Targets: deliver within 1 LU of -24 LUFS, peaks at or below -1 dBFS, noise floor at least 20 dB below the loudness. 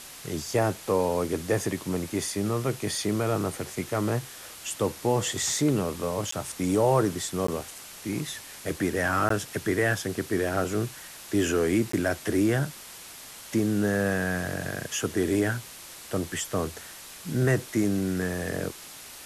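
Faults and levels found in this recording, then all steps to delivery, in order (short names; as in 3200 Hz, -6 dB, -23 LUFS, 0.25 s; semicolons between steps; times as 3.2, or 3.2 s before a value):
dropouts 4; longest dropout 14 ms; noise floor -44 dBFS; noise floor target -48 dBFS; loudness -27.5 LUFS; peak -11.0 dBFS; loudness target -24.0 LUFS
-> interpolate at 6.31/7.47/9.29/11.92, 14 ms; denoiser 6 dB, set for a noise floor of -44 dBFS; gain +3.5 dB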